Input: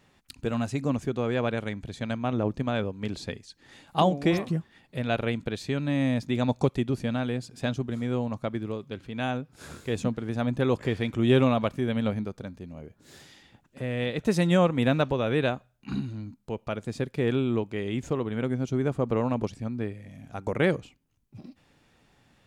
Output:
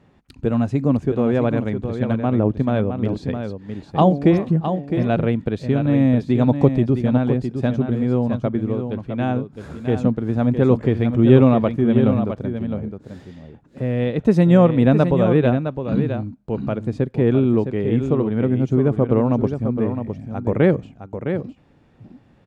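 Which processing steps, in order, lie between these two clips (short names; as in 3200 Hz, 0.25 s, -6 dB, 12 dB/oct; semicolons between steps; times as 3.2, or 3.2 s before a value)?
HPF 300 Hz 6 dB/oct; tilt -4.5 dB/oct; on a send: echo 0.661 s -8 dB; on the sum: gain +4.5 dB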